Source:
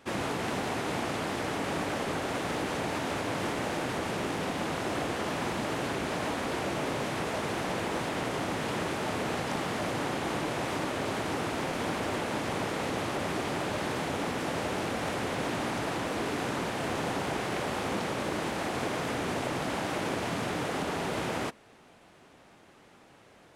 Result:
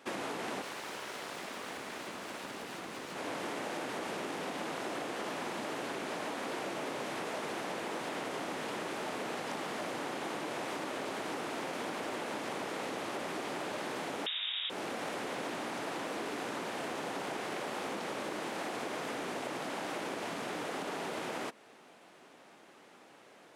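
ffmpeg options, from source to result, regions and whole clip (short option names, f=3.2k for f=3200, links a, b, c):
-filter_complex "[0:a]asettb=1/sr,asplit=3[a][b][c];[a]atrim=end=0.624[d];[b]atrim=start=0.62:end=3.15,asetpts=PTS-STARTPTS,afade=t=in:d=0.004:c=qsin,afade=t=out:st=2.526:d=0.004:c=qsin,asubboost=boost=11.5:cutoff=140,aeval=exprs='abs(val(0))':c=same[e];[c]atrim=start=3.146[f];[d][e]acrossfade=d=0.004:c1=hsin:c2=qsin[g];[g][f]acrossfade=d=0.004:c1=qsin:c2=hsin,asettb=1/sr,asplit=3[h][i][j];[h]atrim=end=14.264[k];[i]atrim=start=14.26:end=14.7,asetpts=PTS-STARTPTS,afade=t=in:d=0.004:c=qsin,afade=t=out:st=0.436:d=0.004:c=qsin,lowpass=f=3.3k:t=q:w=0.5098,lowpass=f=3.3k:t=q:w=0.6013,lowpass=f=3.3k:t=q:w=0.9,lowpass=f=3.3k:t=q:w=2.563,afreqshift=-3900,aemphasis=mode=production:type=riaa[l];[j]atrim=start=14.696[m];[k][l]acrossfade=d=0.004:c1=hsin:c2=qsin[n];[n][m]acrossfade=d=0.004:c1=qsin:c2=hsin,acompressor=threshold=-34dB:ratio=6,highpass=240"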